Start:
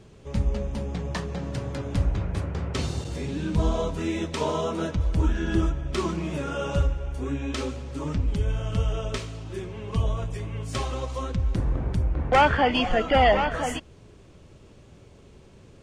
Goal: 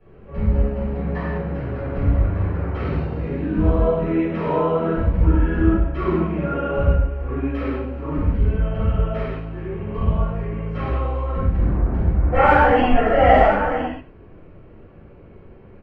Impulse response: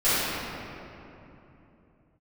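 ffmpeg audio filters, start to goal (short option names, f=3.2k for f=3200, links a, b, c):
-filter_complex "[0:a]bandreject=f=3.5k:w=10,acrossover=split=280|510|2500[a][b][c][d];[d]acrusher=bits=2:mix=0:aa=0.5[e];[a][b][c][e]amix=inputs=4:normalize=0,asplit=2[f][g];[g]adelay=90,highpass=300,lowpass=3.4k,asoftclip=type=hard:threshold=-17.5dB,volume=-13dB[h];[f][h]amix=inputs=2:normalize=0[i];[1:a]atrim=start_sample=2205,afade=t=out:st=0.27:d=0.01,atrim=end_sample=12348[j];[i][j]afir=irnorm=-1:irlink=0,volume=-10.5dB"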